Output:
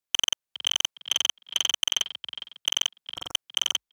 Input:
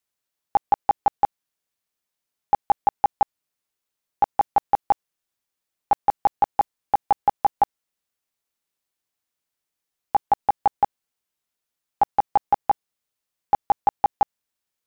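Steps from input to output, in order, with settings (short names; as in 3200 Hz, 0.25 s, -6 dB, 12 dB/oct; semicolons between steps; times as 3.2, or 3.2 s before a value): spectral repair 12–12.56, 380–1400 Hz; dynamic EQ 250 Hz, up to +5 dB, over -39 dBFS, Q 0.8; wide varispeed 3.79×; on a send: frequency-shifting echo 0.41 s, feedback 31%, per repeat +46 Hz, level -16 dB; on the sum: core saturation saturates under 3500 Hz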